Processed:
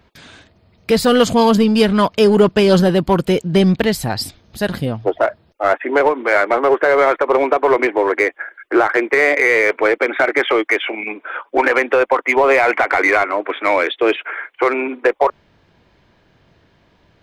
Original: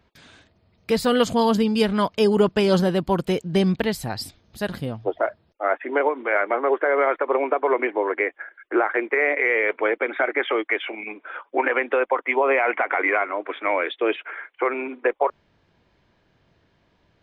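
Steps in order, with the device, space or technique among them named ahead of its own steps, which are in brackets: parallel distortion (in parallel at -5 dB: hard clip -21.5 dBFS, distortion -7 dB); on the sum: gain +4.5 dB

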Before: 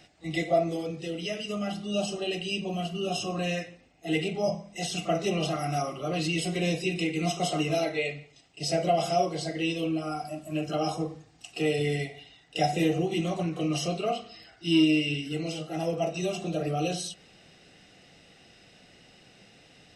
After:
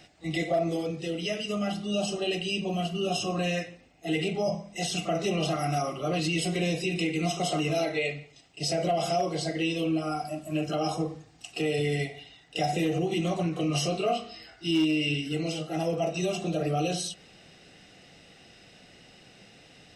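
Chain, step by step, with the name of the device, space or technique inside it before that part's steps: clipper into limiter (hard clip -16 dBFS, distortion -30 dB; limiter -21 dBFS, peak gain reduction 5 dB); 13.68–14.71 doubler 21 ms -6.5 dB; gain +2 dB

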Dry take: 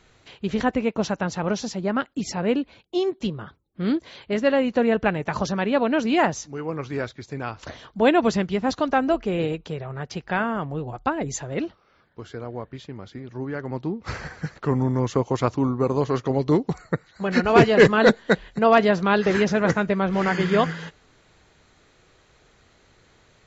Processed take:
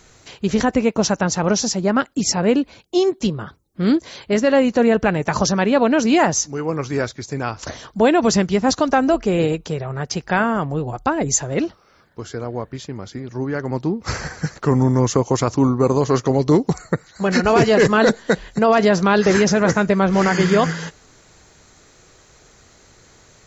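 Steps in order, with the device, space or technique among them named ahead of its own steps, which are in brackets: over-bright horn tweeter (resonant high shelf 4500 Hz +7 dB, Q 1.5; limiter -12.5 dBFS, peak gain reduction 8.5 dB); gain +6.5 dB

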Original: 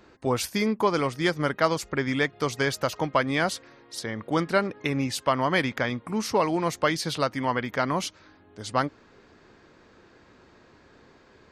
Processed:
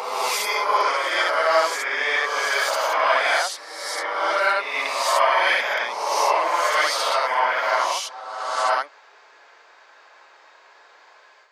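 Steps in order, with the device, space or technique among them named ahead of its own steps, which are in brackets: ghost voice (reverse; reverb RT60 1.8 s, pre-delay 39 ms, DRR -8.5 dB; reverse; HPF 660 Hz 24 dB/oct)

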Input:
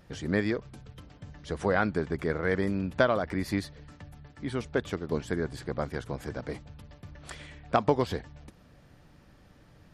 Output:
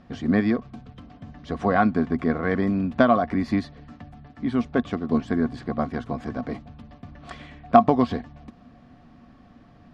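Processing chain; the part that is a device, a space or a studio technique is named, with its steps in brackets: inside a cardboard box (LPF 4400 Hz 12 dB/oct; small resonant body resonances 240/710/1100 Hz, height 15 dB, ringing for 75 ms); gain +1.5 dB

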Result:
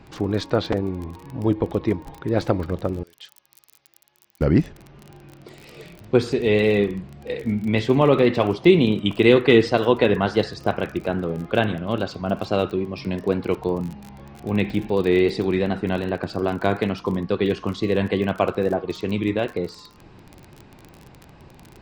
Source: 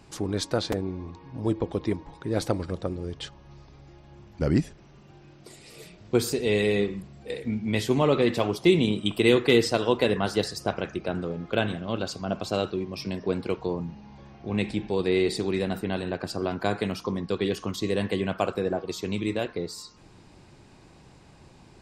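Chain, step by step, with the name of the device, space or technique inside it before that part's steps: lo-fi chain (LPF 3200 Hz 12 dB/oct; wow and flutter; crackle 31/s -35 dBFS); 3.03–4.41 differentiator; gain +5.5 dB

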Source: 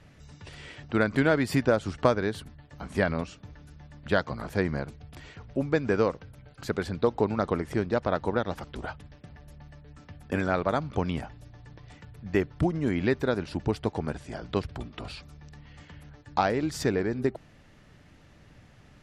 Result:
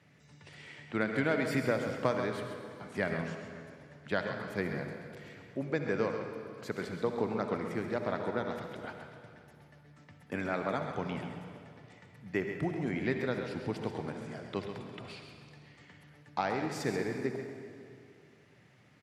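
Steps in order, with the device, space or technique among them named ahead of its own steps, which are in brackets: PA in a hall (HPF 110 Hz 24 dB/oct; bell 2100 Hz +6 dB 0.4 oct; echo 0.134 s -9 dB; reverb RT60 2.4 s, pre-delay 55 ms, DRR 5.5 dB); gain -8 dB

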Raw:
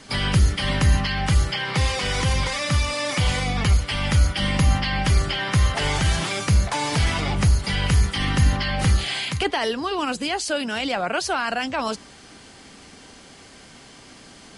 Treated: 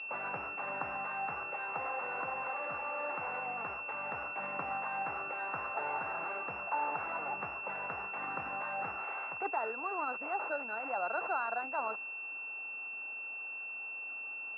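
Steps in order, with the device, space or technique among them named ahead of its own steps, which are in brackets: toy sound module (decimation joined by straight lines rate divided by 8×; pulse-width modulation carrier 2700 Hz; speaker cabinet 610–4100 Hz, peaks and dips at 850 Hz +5 dB, 1400 Hz +8 dB, 3000 Hz -4 dB); gain -8.5 dB

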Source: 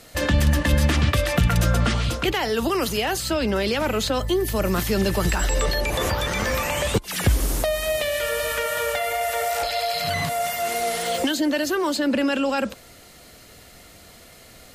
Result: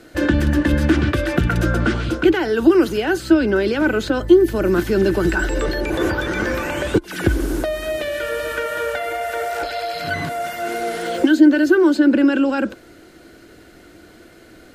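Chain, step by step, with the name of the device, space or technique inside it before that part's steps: inside a helmet (high shelf 4600 Hz -9 dB; small resonant body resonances 330/1500 Hz, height 17 dB, ringing for 45 ms); gain -1 dB

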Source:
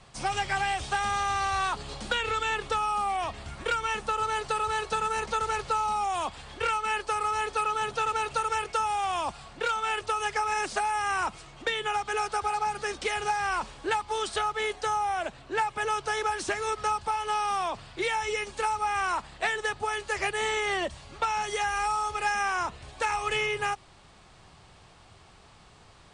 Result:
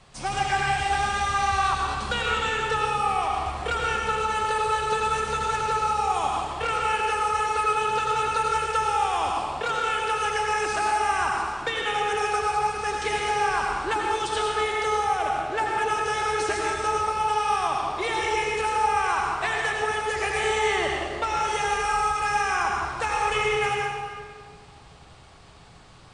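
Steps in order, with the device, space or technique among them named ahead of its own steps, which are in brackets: stairwell (reverb RT60 2.0 s, pre-delay 79 ms, DRR -2 dB)

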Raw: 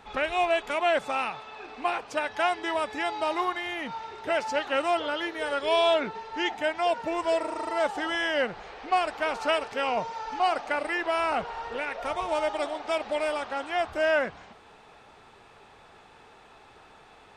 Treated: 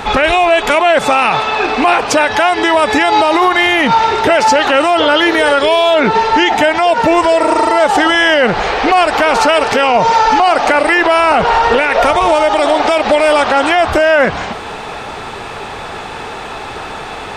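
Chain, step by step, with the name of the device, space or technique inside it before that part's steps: loud club master (compressor 2:1, threshold -30 dBFS, peak gain reduction 6.5 dB; hard clip -20 dBFS, distortion -37 dB; maximiser +29 dB); gain -1 dB

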